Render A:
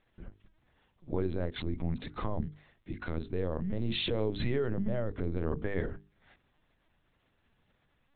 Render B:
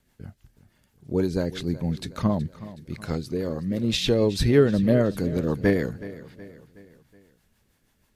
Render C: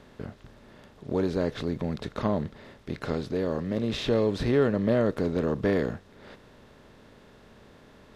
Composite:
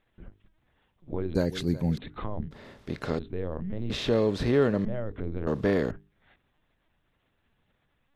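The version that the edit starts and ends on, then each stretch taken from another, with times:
A
1.35–1.98 from B
2.51–3.19 from C
3.9–4.85 from C
5.47–5.91 from C

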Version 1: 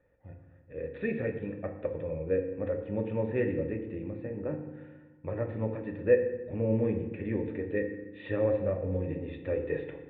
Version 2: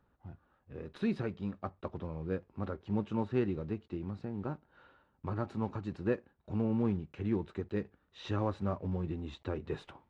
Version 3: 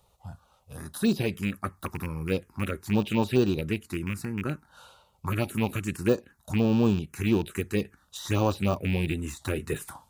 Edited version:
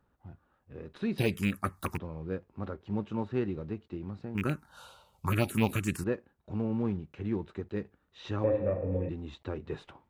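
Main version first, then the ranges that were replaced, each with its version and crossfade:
2
1.18–1.98 from 3
4.35–6.04 from 3
8.44–9.09 from 1

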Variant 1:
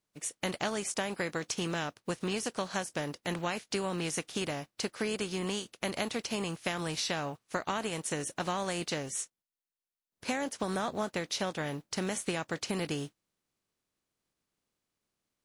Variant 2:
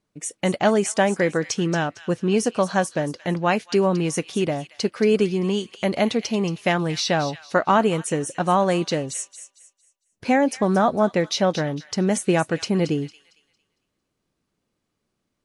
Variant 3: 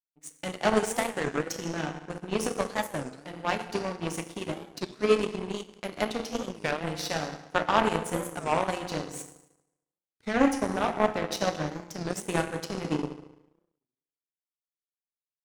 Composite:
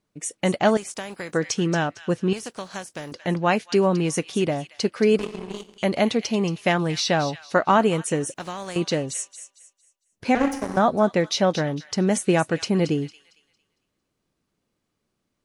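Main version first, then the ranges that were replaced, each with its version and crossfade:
2
0.77–1.33 from 1
2.33–3.12 from 1
5.19–5.78 from 3
8.34–8.76 from 1
10.35–10.77 from 3

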